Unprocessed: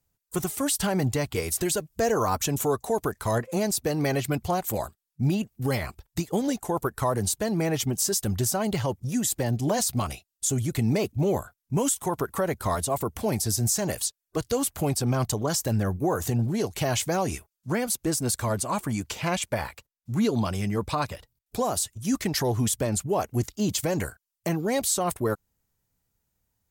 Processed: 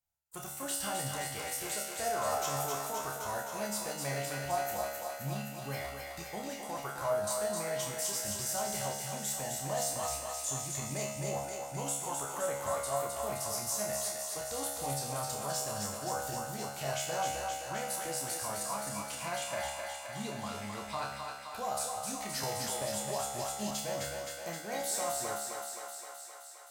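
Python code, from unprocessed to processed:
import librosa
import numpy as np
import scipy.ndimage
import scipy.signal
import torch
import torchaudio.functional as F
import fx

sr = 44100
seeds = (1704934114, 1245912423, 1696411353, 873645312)

p1 = fx.low_shelf_res(x, sr, hz=510.0, db=-7.0, q=1.5)
p2 = fx.comb_fb(p1, sr, f0_hz=70.0, decay_s=0.91, harmonics='all', damping=0.0, mix_pct=90)
p3 = np.sign(p2) * np.maximum(np.abs(p2) - 10.0 ** (-54.5 / 20.0), 0.0)
p4 = p2 + (p3 * 10.0 ** (-11.0 / 20.0))
p5 = fx.doubler(p4, sr, ms=30.0, db=-5.5)
p6 = p5 + fx.echo_thinned(p5, sr, ms=261, feedback_pct=74, hz=360.0, wet_db=-4.0, dry=0)
y = fx.band_squash(p6, sr, depth_pct=70, at=(22.43, 23.71))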